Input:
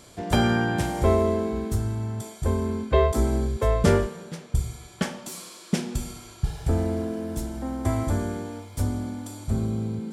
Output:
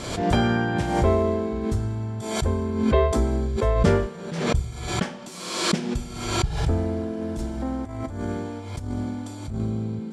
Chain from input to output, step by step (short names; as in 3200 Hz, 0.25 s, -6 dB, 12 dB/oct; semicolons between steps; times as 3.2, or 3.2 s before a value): 7.21–9.6 negative-ratio compressor -29 dBFS, ratio -0.5; air absorption 65 m; backwards sustainer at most 51 dB/s